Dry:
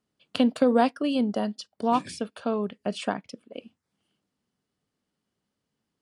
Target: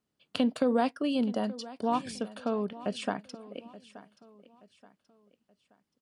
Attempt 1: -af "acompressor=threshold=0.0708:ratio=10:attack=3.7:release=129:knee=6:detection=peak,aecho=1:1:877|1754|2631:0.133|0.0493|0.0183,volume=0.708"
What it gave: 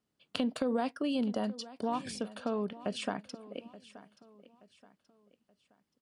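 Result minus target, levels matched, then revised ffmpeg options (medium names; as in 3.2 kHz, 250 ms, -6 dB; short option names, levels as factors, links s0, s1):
compression: peak gain reduction +6 dB
-af "acompressor=threshold=0.168:ratio=10:attack=3.7:release=129:knee=6:detection=peak,aecho=1:1:877|1754|2631:0.133|0.0493|0.0183,volume=0.708"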